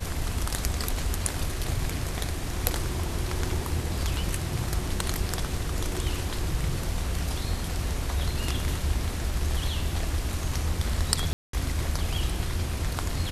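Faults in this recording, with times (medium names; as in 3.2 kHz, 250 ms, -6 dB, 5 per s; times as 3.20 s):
11.33–11.53 s: dropout 203 ms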